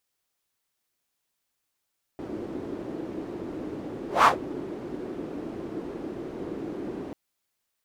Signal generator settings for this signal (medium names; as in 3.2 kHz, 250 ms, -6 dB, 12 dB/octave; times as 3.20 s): whoosh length 4.94 s, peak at 2.06 s, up 0.17 s, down 0.14 s, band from 330 Hz, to 1.2 kHz, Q 2.9, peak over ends 19 dB